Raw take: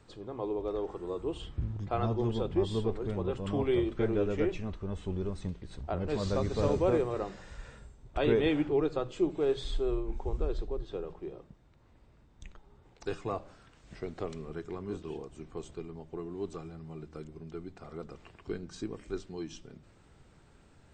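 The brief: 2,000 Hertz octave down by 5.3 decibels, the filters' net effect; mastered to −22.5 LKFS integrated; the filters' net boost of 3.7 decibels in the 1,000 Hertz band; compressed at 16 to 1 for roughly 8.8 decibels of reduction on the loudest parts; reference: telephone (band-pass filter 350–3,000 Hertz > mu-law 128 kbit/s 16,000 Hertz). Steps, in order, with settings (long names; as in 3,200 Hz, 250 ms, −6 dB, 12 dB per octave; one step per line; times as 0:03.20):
parametric band 1,000 Hz +7.5 dB
parametric band 2,000 Hz −9 dB
downward compressor 16 to 1, threshold −30 dBFS
band-pass filter 350–3,000 Hz
level +18.5 dB
mu-law 128 kbit/s 16,000 Hz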